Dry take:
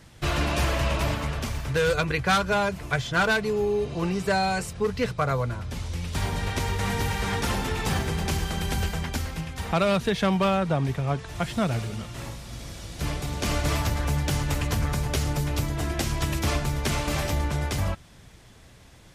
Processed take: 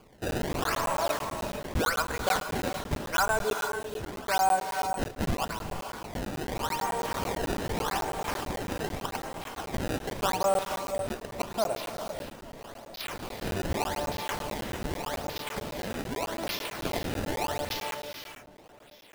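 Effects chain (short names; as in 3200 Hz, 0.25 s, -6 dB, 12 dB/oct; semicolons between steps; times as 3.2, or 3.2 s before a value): HPF 220 Hz 12 dB/oct; notch 500 Hz, Q 12; in parallel at +2.5 dB: limiter -22 dBFS, peak gain reduction 11.5 dB; on the sum: LFO band-pass saw down 0.85 Hz 570–4400 Hz; decimation with a swept rate 23×, swing 160% 0.83 Hz; on a send: tape echo 0.433 s, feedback 69%, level -16.5 dB, low-pass 1300 Hz; on the sum: non-linear reverb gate 0.5 s rising, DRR 6 dB; crackling interface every 0.11 s, samples 512, zero, from 0.31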